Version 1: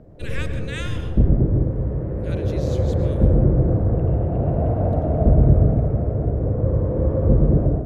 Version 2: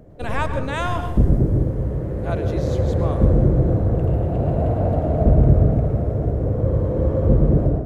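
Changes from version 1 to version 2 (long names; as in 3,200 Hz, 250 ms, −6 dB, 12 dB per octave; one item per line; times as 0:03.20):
speech: remove inverse Chebyshev high-pass filter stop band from 300 Hz, stop band 80 dB
background: remove high-frequency loss of the air 430 metres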